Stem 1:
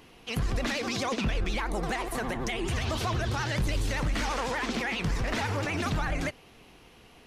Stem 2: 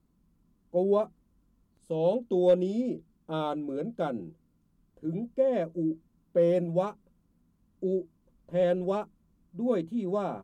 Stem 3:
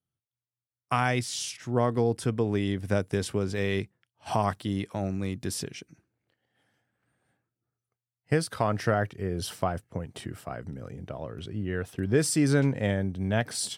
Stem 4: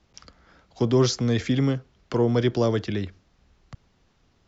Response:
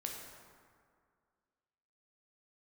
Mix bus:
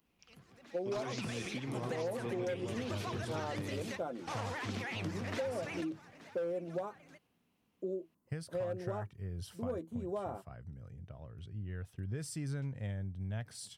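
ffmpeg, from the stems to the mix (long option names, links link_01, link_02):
-filter_complex "[0:a]highpass=frequency=120:width=0.5412,highpass=frequency=120:width=1.3066,volume=-8.5dB,asplit=2[link_01][link_02];[link_02]volume=-18dB[link_03];[1:a]highpass=frequency=630:poles=1,equalizer=frequency=3400:width=0.65:gain=-13.5,asoftclip=type=hard:threshold=-25dB,volume=1dB[link_04];[2:a]asubboost=boost=5:cutoff=130,volume=-16dB,asplit=2[link_05][link_06];[3:a]equalizer=frequency=2500:width_type=o:width=0.42:gain=14.5,adelay=50,volume=-19dB,asplit=2[link_07][link_08];[link_08]volume=-4dB[link_09];[link_06]apad=whole_len=320598[link_10];[link_01][link_10]sidechaingate=range=-19dB:threshold=-57dB:ratio=16:detection=peak[link_11];[link_03][link_09]amix=inputs=2:normalize=0,aecho=0:1:876:1[link_12];[link_11][link_04][link_05][link_07][link_12]amix=inputs=5:normalize=0,acompressor=threshold=-34dB:ratio=6"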